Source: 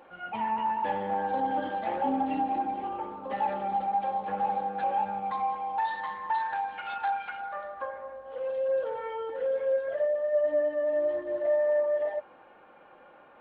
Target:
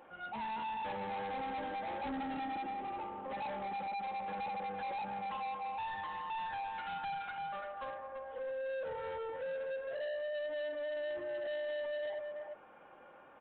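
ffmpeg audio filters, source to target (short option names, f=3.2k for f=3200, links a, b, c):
-filter_complex "[0:a]bandreject=f=60:t=h:w=6,bandreject=f=120:t=h:w=6,bandreject=f=180:t=h:w=6,bandreject=f=240:t=h:w=6,bandreject=f=300:t=h:w=6,bandreject=f=360:t=h:w=6,bandreject=f=420:t=h:w=6,bandreject=f=480:t=h:w=6,bandreject=f=540:t=h:w=6,asplit=2[a][b];[b]adelay=340,highpass=300,lowpass=3.4k,asoftclip=type=hard:threshold=-27dB,volume=-9dB[c];[a][c]amix=inputs=2:normalize=0,aresample=8000,asoftclip=type=tanh:threshold=-33.5dB,aresample=44100,equalizer=f=87:w=0.5:g=2.5,volume=-3.5dB"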